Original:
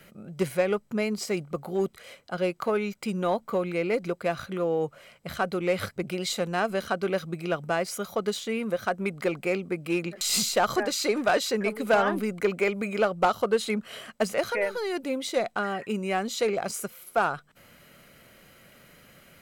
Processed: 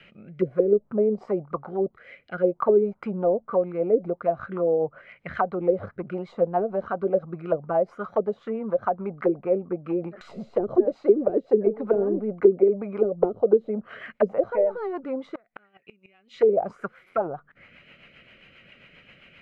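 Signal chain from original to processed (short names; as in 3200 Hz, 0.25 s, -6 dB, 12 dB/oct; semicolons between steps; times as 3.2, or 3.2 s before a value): rotary speaker horn 0.6 Hz, later 7.5 Hz, at 3.21; 15.34–16.36 flipped gate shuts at -24 dBFS, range -33 dB; envelope low-pass 380–2800 Hz down, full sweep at -22.5 dBFS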